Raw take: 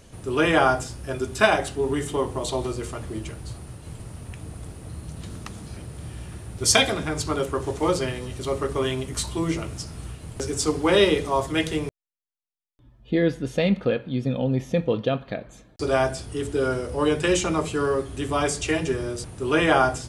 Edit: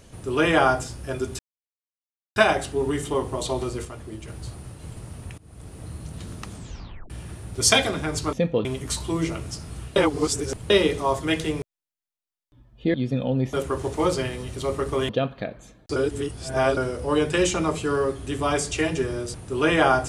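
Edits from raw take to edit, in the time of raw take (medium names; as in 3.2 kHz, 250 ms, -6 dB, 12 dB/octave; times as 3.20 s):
1.39 s: insert silence 0.97 s
2.88–3.31 s: gain -5 dB
4.41–4.82 s: fade in, from -23 dB
5.56 s: tape stop 0.57 s
7.36–8.92 s: swap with 14.67–14.99 s
10.23–10.97 s: reverse
13.21–14.08 s: delete
15.86–16.67 s: reverse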